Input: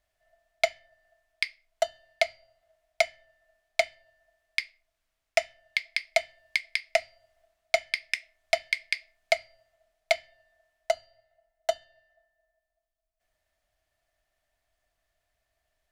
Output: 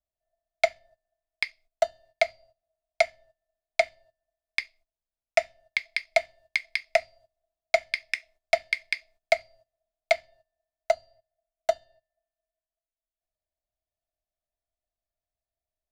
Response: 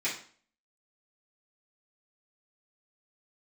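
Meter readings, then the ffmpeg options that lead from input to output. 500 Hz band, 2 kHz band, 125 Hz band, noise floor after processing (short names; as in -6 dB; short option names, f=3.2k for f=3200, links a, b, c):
+2.5 dB, +1.0 dB, n/a, under -85 dBFS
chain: -filter_complex "[0:a]agate=range=-16dB:threshold=-56dB:ratio=16:detection=peak,acrossover=split=280|1100|2700[a][b][c][d];[c]aeval=exprs='sgn(val(0))*max(abs(val(0))-0.00119,0)':c=same[e];[a][b][e][d]amix=inputs=4:normalize=0,highshelf=f=3.8k:g=-8,bandreject=f=3k:w=12,volume=3dB"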